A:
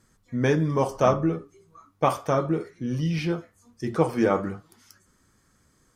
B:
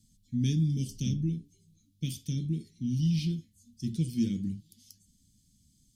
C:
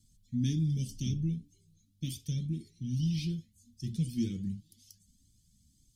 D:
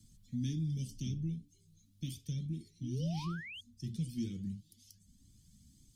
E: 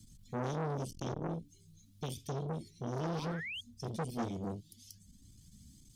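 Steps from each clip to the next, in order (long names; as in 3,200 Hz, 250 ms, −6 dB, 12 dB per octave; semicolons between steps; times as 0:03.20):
elliptic band-stop filter 230–3,400 Hz, stop band 70 dB
flanger whose copies keep moving one way rising 1.9 Hz; level +2.5 dB
sound drawn into the spectrogram rise, 0:02.82–0:03.61, 260–3,400 Hz −43 dBFS; multiband upward and downward compressor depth 40%; level −5 dB
saturating transformer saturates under 890 Hz; level +5.5 dB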